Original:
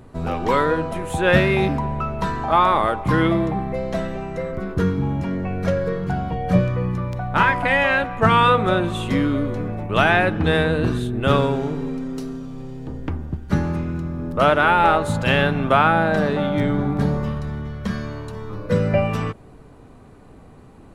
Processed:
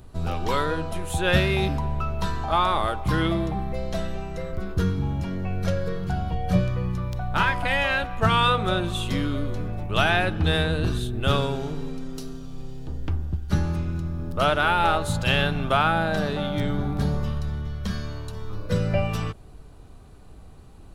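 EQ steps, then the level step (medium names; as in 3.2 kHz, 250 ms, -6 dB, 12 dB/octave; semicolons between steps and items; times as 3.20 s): ten-band graphic EQ 125 Hz -7 dB, 250 Hz -11 dB, 500 Hz -9 dB, 1 kHz -8 dB, 2 kHz -10 dB, 8 kHz -4 dB; +5.5 dB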